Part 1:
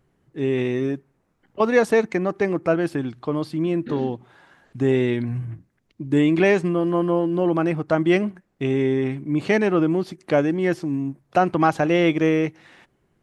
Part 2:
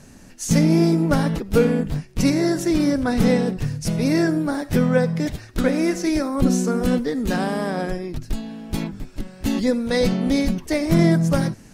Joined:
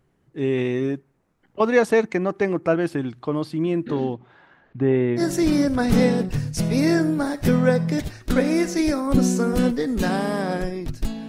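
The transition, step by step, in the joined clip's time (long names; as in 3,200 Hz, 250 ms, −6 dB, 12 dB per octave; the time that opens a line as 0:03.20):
part 1
0:04.13–0:05.22: low-pass filter 4,800 Hz → 1,500 Hz
0:05.19: continue with part 2 from 0:02.47, crossfade 0.06 s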